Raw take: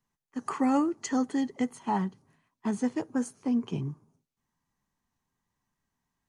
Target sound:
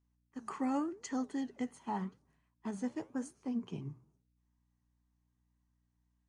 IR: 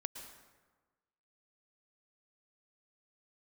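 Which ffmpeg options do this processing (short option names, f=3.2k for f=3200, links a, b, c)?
-af "aresample=22050,aresample=44100,aeval=exprs='val(0)+0.000447*(sin(2*PI*60*n/s)+sin(2*PI*2*60*n/s)/2+sin(2*PI*3*60*n/s)/3+sin(2*PI*4*60*n/s)/4+sin(2*PI*5*60*n/s)/5)':c=same,flanger=delay=3.4:depth=9.7:regen=-85:speed=0.89:shape=triangular,volume=-4.5dB"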